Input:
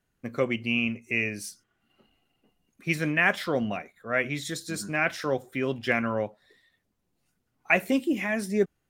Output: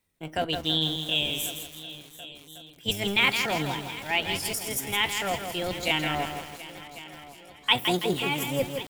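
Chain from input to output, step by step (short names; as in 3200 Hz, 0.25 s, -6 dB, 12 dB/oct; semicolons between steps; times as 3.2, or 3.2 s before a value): octaver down 1 oct, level -1 dB; EQ curve 220 Hz 0 dB, 4100 Hz +8 dB, 6600 Hz +12 dB; on a send: multi-head echo 0.364 s, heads second and third, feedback 57%, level -17.5 dB; on the sum: pitch shift +5 st; lo-fi delay 0.164 s, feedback 55%, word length 6-bit, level -6 dB; gain -5 dB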